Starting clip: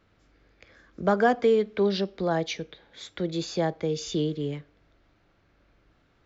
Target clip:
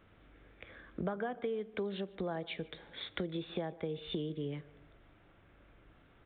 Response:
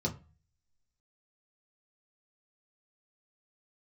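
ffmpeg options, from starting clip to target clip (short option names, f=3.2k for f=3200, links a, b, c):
-filter_complex "[0:a]acompressor=threshold=-36dB:ratio=10,asplit=2[a][b];[b]adelay=149,lowpass=f=2.1k:p=1,volume=-19dB,asplit=2[c][d];[d]adelay=149,lowpass=f=2.1k:p=1,volume=0.42,asplit=2[e][f];[f]adelay=149,lowpass=f=2.1k:p=1,volume=0.42[g];[c][e][g]amix=inputs=3:normalize=0[h];[a][h]amix=inputs=2:normalize=0,aresample=8000,aresample=44100,volume=2dB"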